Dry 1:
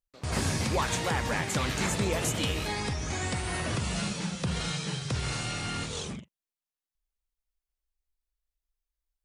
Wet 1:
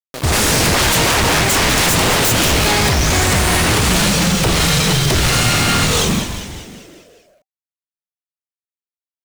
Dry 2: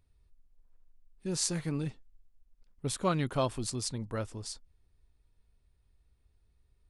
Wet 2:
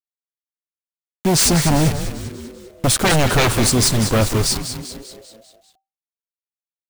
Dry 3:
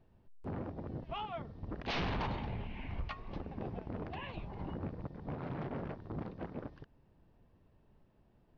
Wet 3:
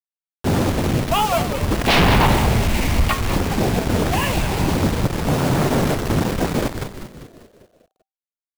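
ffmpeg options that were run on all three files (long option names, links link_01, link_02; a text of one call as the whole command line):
ffmpeg -i in.wav -filter_complex "[0:a]acrusher=bits=7:mix=0:aa=0.000001,aeval=exprs='0.266*sin(PI/2*8.91*val(0)/0.266)':channel_layout=same,asplit=7[link_01][link_02][link_03][link_04][link_05][link_06][link_07];[link_02]adelay=197,afreqshift=-130,volume=-9dB[link_08];[link_03]adelay=394,afreqshift=-260,volume=-14.5dB[link_09];[link_04]adelay=591,afreqshift=-390,volume=-20dB[link_10];[link_05]adelay=788,afreqshift=-520,volume=-25.5dB[link_11];[link_06]adelay=985,afreqshift=-650,volume=-31.1dB[link_12];[link_07]adelay=1182,afreqshift=-780,volume=-36.6dB[link_13];[link_01][link_08][link_09][link_10][link_11][link_12][link_13]amix=inputs=7:normalize=0" out.wav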